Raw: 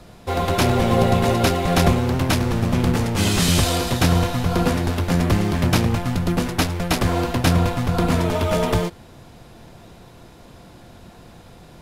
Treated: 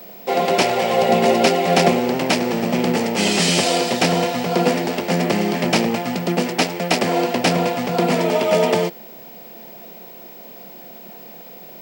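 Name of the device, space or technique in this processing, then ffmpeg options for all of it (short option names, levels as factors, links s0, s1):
old television with a line whistle: -filter_complex "[0:a]highpass=f=210:w=0.5412,highpass=f=210:w=1.3066,equalizer=f=290:t=q:w=4:g=-10,equalizer=f=1100:t=q:w=4:g=-9,equalizer=f=1500:t=q:w=4:g=-8,equalizer=f=3700:t=q:w=4:g=-7,equalizer=f=6500:t=q:w=4:g=-5,lowpass=f=8000:w=0.5412,lowpass=f=8000:w=1.3066,aeval=exprs='val(0)+0.00562*sin(2*PI*15734*n/s)':c=same,asettb=1/sr,asplit=3[s0][s1][s2];[s0]atrim=end=0.624[s3];[s1]atrim=start=0.62:end=1.09,asetpts=PTS-STARTPTS,afade=t=in:d=0.004:c=qsin,afade=t=out:st=0.466:d=0.004:c=qsin,equalizer=f=260:w=1.3:g=-12.5[s4];[s2]atrim=start=1.086[s5];[s3][s4]acrossfade=d=0.004:c1=hsin:c2=qsin[s6];[s6][s5]acrossfade=d=0.004:c1=qsin:c2=hsin,highpass=99,volume=2.24"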